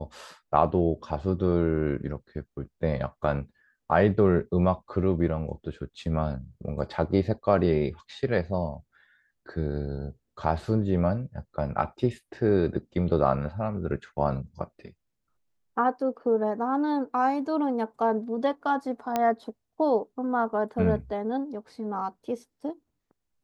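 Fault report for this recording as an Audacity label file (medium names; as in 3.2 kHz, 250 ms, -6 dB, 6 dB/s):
19.160000	19.160000	pop -12 dBFS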